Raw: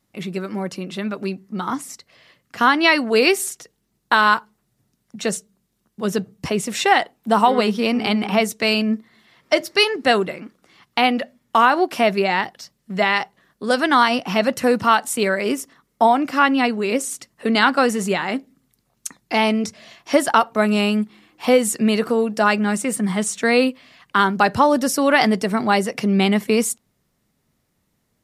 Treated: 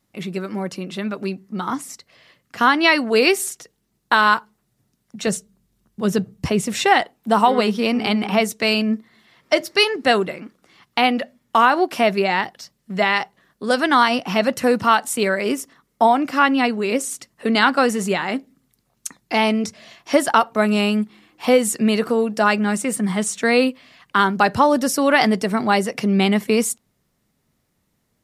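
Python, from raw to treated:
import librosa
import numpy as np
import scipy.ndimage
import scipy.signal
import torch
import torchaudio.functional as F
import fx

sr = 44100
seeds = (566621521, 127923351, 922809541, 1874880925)

y = fx.low_shelf(x, sr, hz=130.0, db=12.0, at=(5.27, 7.02))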